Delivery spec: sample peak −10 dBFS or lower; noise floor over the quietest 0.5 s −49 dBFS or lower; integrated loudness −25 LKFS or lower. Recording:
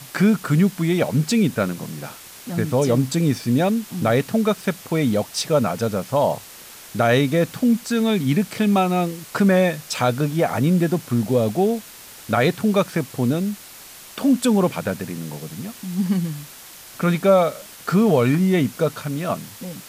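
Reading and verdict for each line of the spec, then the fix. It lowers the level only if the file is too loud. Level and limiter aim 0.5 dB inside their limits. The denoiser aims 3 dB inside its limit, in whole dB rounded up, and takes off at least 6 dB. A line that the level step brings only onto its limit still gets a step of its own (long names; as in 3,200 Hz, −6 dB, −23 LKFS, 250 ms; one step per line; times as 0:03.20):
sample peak −6.5 dBFS: out of spec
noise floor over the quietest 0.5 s −42 dBFS: out of spec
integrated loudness −20.5 LKFS: out of spec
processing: broadband denoise 6 dB, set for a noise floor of −42 dBFS
level −5 dB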